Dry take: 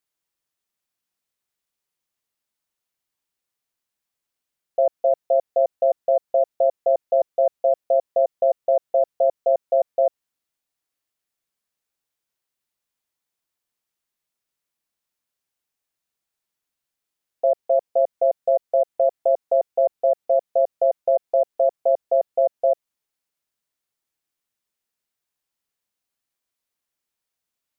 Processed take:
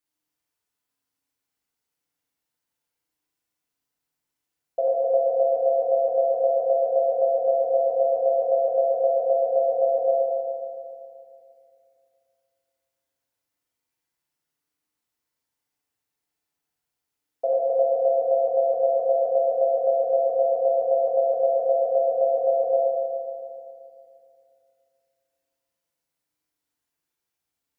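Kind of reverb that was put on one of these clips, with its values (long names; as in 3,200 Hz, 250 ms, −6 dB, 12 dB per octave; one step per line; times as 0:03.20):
feedback delay network reverb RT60 2.5 s, low-frequency decay 1.25×, high-frequency decay 0.45×, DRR −5.5 dB
level −5 dB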